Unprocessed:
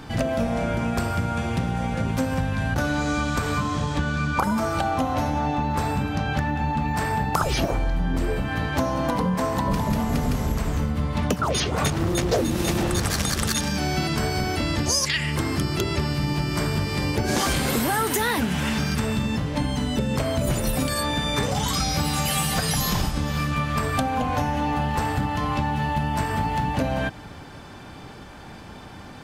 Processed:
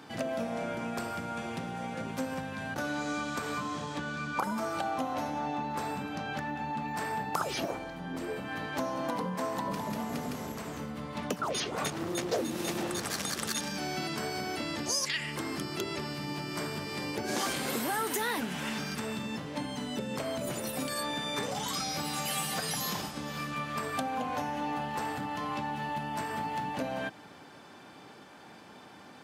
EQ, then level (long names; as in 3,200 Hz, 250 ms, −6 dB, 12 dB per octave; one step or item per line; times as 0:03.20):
high-pass filter 220 Hz 12 dB per octave
−8.0 dB